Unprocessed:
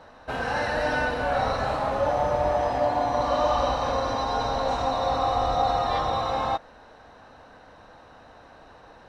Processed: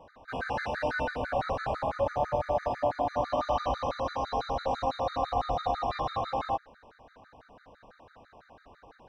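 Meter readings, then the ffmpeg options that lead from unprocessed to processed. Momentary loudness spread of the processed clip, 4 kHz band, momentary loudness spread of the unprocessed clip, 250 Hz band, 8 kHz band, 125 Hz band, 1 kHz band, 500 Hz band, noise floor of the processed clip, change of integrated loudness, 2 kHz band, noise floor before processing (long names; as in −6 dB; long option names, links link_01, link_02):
4 LU, −8.5 dB, 3 LU, −6.0 dB, below −10 dB, −5.5 dB, −6.0 dB, −5.5 dB, −61 dBFS, −6.0 dB, −6.5 dB, −51 dBFS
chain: -af "highshelf=frequency=5000:gain=-8,afftfilt=real='re*gt(sin(2*PI*6*pts/sr)*(1-2*mod(floor(b*sr/1024/1200),2)),0)':imag='im*gt(sin(2*PI*6*pts/sr)*(1-2*mod(floor(b*sr/1024/1200),2)),0)':win_size=1024:overlap=0.75,volume=-2.5dB"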